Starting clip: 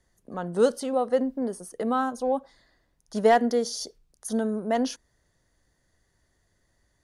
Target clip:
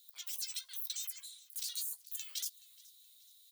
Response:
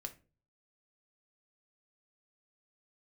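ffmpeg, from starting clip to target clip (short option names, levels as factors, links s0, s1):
-filter_complex "[0:a]deesser=0.8,aemphasis=mode=production:type=riaa,afftfilt=real='re*lt(hypot(re,im),0.0562)':imag='im*lt(hypot(re,im),0.0562)':win_size=1024:overlap=0.75,asplit=2[s0][s1];[s1]acompressor=threshold=0.00631:ratio=6,volume=0.708[s2];[s0][s2]amix=inputs=2:normalize=0,alimiter=level_in=1.26:limit=0.0631:level=0:latency=1:release=33,volume=0.794,highpass=f=2200:t=q:w=3.3,asplit=2[s3][s4];[s4]adelay=32,volume=0.335[s5];[s3][s5]amix=inputs=2:normalize=0,aecho=1:1:848|1696|2544:0.0794|0.035|0.0154,asetrate=88200,aresample=44100,volume=0.794"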